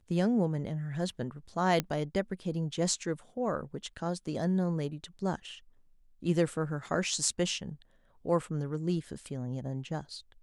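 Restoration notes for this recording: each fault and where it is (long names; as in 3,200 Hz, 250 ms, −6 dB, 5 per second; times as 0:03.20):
0:01.80: click −14 dBFS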